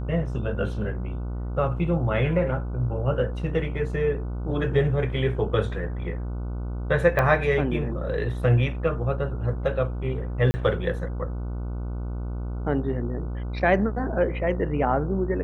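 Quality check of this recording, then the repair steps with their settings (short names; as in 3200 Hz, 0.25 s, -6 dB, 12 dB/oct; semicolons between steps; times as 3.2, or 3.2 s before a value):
buzz 60 Hz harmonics 25 -30 dBFS
7.19 pop -12 dBFS
10.51–10.54 gap 30 ms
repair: de-click; de-hum 60 Hz, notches 25; interpolate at 10.51, 30 ms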